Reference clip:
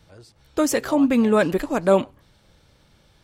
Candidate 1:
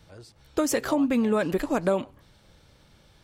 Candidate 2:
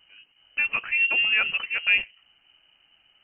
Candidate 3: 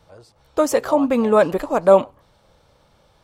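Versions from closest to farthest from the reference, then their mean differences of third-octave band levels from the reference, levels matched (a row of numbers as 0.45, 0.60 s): 1, 3, 2; 2.5, 3.5, 15.0 dB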